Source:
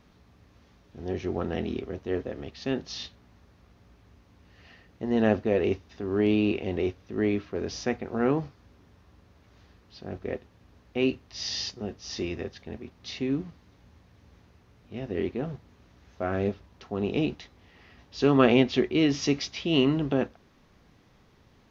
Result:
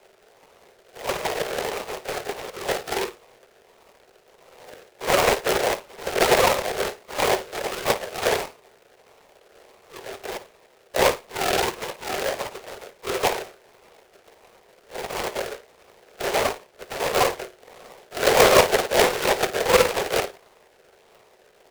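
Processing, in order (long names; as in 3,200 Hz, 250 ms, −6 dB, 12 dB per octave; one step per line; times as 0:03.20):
frequency axis turned over on the octave scale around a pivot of 1,200 Hz
comb filter 1.8 ms, depth 32%
in parallel at −1.5 dB: brickwall limiter −19.5 dBFS, peak gain reduction 10 dB
on the sum: sample-and-hold swept by an LFO 34×, swing 60% 1.5 Hz
Butterworth high-pass 370 Hz 96 dB per octave
on a send: flutter between parallel walls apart 9.4 metres, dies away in 0.24 s
on the sum: short delay modulated by noise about 1,200 Hz, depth 0.11 ms
level +6.5 dB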